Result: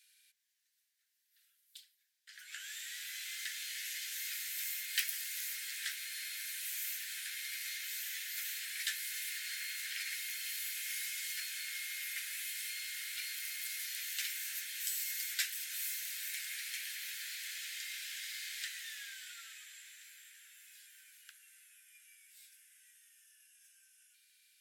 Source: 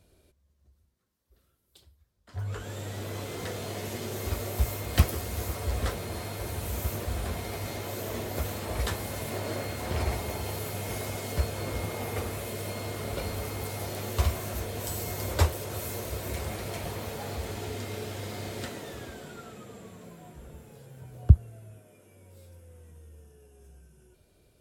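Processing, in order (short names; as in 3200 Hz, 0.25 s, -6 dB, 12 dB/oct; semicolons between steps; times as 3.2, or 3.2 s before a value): steep high-pass 1600 Hz 72 dB/oct; in parallel at 0 dB: compressor, threshold -50 dBFS, peak gain reduction 21.5 dB; on the sum: gain -1.5 dB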